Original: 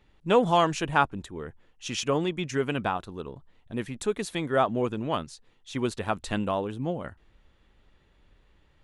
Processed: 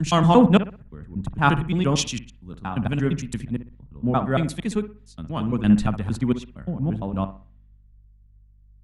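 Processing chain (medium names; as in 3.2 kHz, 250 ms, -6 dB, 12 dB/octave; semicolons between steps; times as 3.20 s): slices played last to first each 115 ms, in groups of 7; resonant low shelf 290 Hz +9 dB, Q 1.5; hum 50 Hz, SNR 18 dB; bucket-brigade echo 62 ms, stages 1024, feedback 43%, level -11 dB; three bands expanded up and down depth 100%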